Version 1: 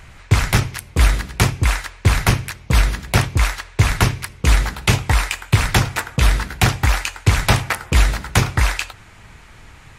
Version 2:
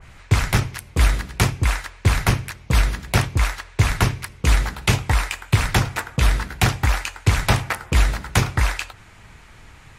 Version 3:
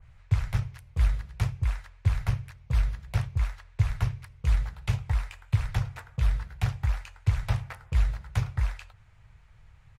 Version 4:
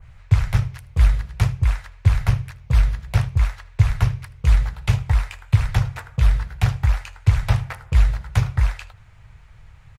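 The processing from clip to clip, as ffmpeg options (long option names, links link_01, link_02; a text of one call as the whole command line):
ffmpeg -i in.wav -af "adynamicequalizer=threshold=0.0282:dfrequency=2100:dqfactor=0.7:tfrequency=2100:tqfactor=0.7:attack=5:release=100:ratio=0.375:range=2:mode=cutabove:tftype=highshelf,volume=-2.5dB" out.wav
ffmpeg -i in.wav -af "aeval=exprs='0.562*(cos(1*acos(clip(val(0)/0.562,-1,1)))-cos(1*PI/2))+0.0316*(cos(3*acos(clip(val(0)/0.562,-1,1)))-cos(3*PI/2))':channel_layout=same,firequalizer=gain_entry='entry(120,0);entry(260,-21);entry(500,-10);entry(8300,-16)':delay=0.05:min_phase=1,volume=-5.5dB" out.wav
ffmpeg -i in.wav -af "aecho=1:1:78:0.0841,volume=8.5dB" out.wav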